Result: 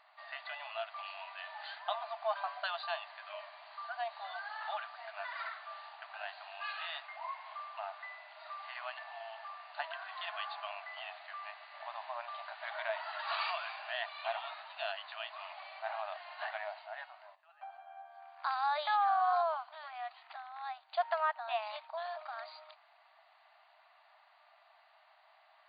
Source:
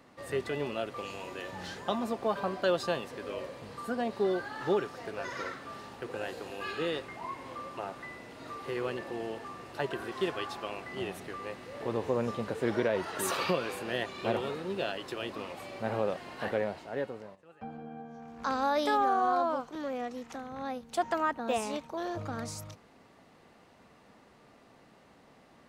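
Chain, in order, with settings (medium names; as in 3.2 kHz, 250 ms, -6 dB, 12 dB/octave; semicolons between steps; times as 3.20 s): brick-wall FIR band-pass 600–4800 Hz; trim -2 dB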